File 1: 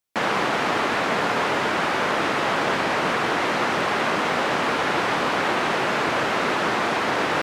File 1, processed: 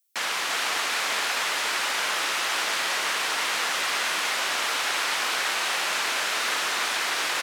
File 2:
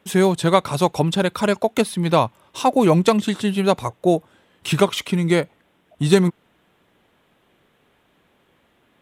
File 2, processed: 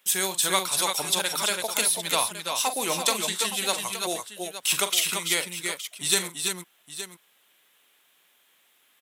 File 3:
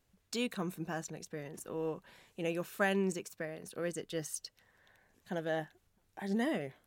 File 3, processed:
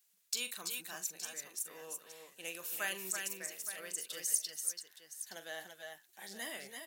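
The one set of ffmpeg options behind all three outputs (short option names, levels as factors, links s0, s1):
-af "aderivative,aecho=1:1:42|328|339|868:0.282|0.282|0.531|0.237,volume=2.51"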